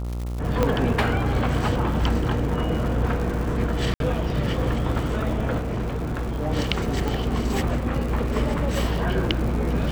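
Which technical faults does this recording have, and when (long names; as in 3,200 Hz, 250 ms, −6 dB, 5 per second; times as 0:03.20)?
mains buzz 60 Hz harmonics 23 −28 dBFS
surface crackle 210 per second −31 dBFS
0:00.63: click −8 dBFS
0:03.94–0:04.00: drop-out 62 ms
0:05.58–0:06.48: clipping −23 dBFS
0:07.08: click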